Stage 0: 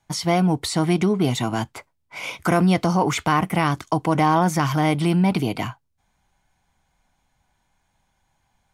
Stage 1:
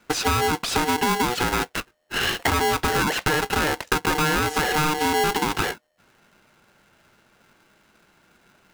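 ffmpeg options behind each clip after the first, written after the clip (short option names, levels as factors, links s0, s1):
-filter_complex "[0:a]asplit=2[s0][s1];[s1]highpass=f=720:p=1,volume=8.91,asoftclip=type=tanh:threshold=0.562[s2];[s0][s2]amix=inputs=2:normalize=0,lowpass=f=1100:p=1,volume=0.501,acompressor=threshold=0.0631:ratio=6,aeval=exprs='val(0)*sgn(sin(2*PI*610*n/s))':c=same,volume=1.68"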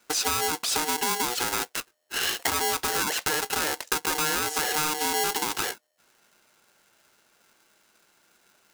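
-af "bass=f=250:g=-10,treble=f=4000:g=10,volume=0.501"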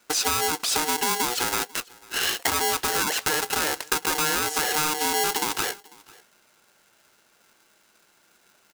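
-af "aecho=1:1:495:0.0631,volume=1.26"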